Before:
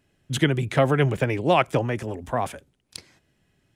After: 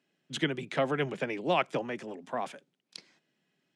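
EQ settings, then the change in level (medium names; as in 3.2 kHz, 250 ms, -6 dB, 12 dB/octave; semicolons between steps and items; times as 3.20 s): steep high-pass 160 Hz 36 dB/octave; low-pass 4.8 kHz 12 dB/octave; treble shelf 3.6 kHz +8.5 dB; -8.5 dB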